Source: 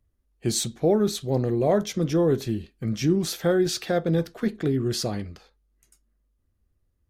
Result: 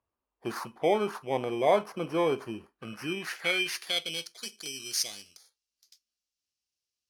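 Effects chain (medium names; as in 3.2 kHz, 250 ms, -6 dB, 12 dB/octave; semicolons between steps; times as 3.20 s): bit-reversed sample order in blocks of 16 samples; band-pass sweep 1 kHz -> 5.3 kHz, 2.64–4.42 s; trim +8.5 dB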